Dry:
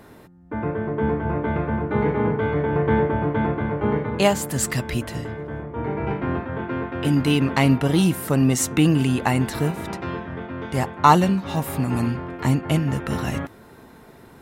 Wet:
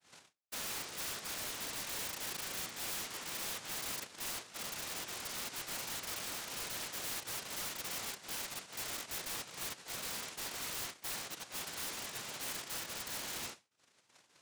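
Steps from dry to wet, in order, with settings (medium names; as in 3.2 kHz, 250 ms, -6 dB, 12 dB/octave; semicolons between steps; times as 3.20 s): Schroeder reverb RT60 0.64 s, combs from 28 ms, DRR -1 dB; low-pass that closes with the level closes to 2.5 kHz, closed at -13 dBFS; reverb removal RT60 1.1 s; in parallel at -8.5 dB: hard clipper -15.5 dBFS, distortion -9 dB; on the sum: cabinet simulation 450–3600 Hz, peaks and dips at 610 Hz -8 dB, 930 Hz -7 dB, 1.6 kHz -4 dB, 2.7 kHz -10 dB; noise-vocoded speech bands 1; compression 8:1, threshold -37 dBFS, peak gain reduction 23.5 dB; treble shelf 2.6 kHz -4 dB; integer overflow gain 37 dB; expander -42 dBFS; trim +3 dB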